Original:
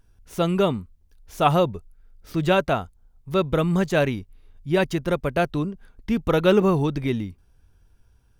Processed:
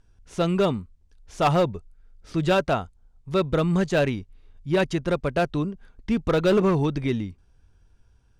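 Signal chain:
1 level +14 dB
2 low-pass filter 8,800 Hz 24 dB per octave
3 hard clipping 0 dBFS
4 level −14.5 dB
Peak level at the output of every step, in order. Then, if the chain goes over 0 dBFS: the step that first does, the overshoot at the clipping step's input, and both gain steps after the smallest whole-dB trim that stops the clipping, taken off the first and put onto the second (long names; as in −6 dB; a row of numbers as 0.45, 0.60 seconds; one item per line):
+9.0, +9.0, 0.0, −14.5 dBFS
step 1, 9.0 dB
step 1 +5 dB, step 4 −5.5 dB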